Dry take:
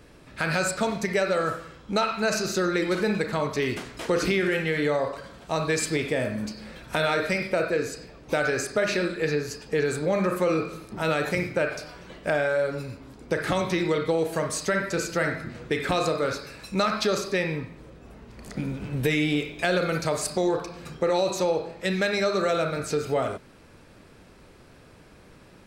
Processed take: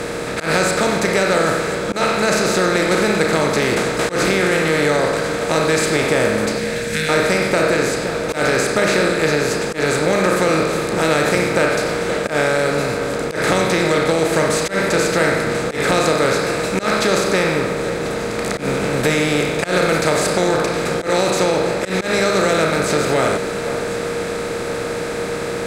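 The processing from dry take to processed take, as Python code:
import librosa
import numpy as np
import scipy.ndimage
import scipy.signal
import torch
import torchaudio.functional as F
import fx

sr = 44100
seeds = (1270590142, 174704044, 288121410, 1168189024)

p1 = fx.bin_compress(x, sr, power=0.4)
p2 = fx.ellip_bandstop(p1, sr, low_hz=230.0, high_hz=1700.0, order=3, stop_db=40, at=(6.58, 7.09))
p3 = p2 + 10.0 ** (-28.0 / 20.0) * np.sin(2.0 * np.pi * 470.0 * np.arange(len(p2)) / sr)
p4 = p3 + fx.echo_alternate(p3, sr, ms=519, hz=1800.0, feedback_pct=62, wet_db=-11.0, dry=0)
p5 = fx.auto_swell(p4, sr, attack_ms=106.0)
y = F.gain(torch.from_numpy(p5), 1.5).numpy()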